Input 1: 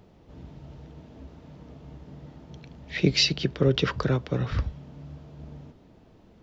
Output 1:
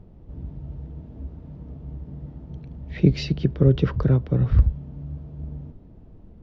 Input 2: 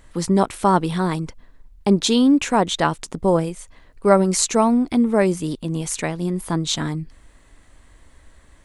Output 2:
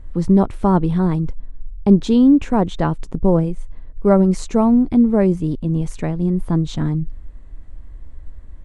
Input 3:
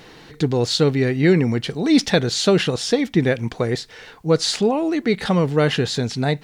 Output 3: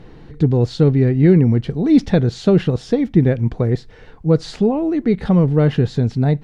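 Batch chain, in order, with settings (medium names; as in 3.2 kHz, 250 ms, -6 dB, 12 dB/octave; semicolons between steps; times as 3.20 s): tilt EQ -4 dB/octave; trim -4 dB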